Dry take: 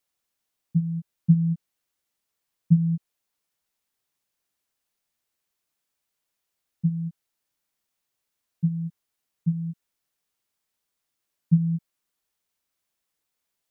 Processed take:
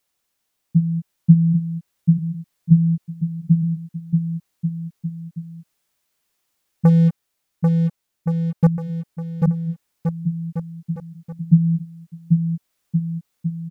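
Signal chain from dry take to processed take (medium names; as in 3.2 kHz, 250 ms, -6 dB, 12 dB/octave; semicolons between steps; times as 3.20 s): 6.85–8.67 s: waveshaping leveller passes 3; on a send: bouncing-ball echo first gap 790 ms, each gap 0.8×, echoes 5; on the sum: trim +6.5 dB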